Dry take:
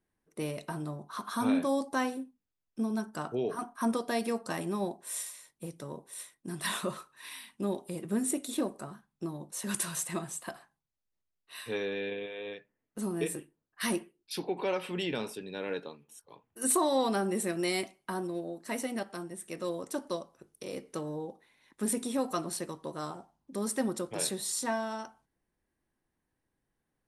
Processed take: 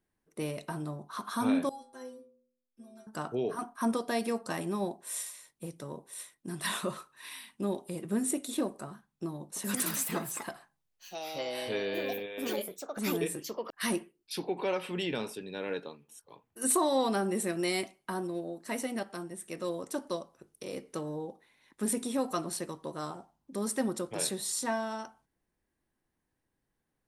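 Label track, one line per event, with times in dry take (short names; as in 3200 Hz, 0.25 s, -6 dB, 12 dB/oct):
1.690000	3.070000	metallic resonator 120 Hz, decay 0.71 s, inharmonicity 0.008
9.420000	14.640000	echoes that change speed 0.14 s, each echo +4 st, echoes 2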